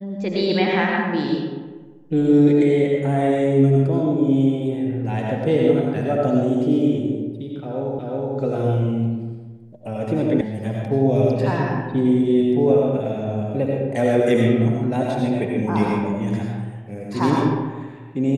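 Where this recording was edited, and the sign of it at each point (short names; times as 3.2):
7.99 repeat of the last 0.37 s
10.41 sound cut off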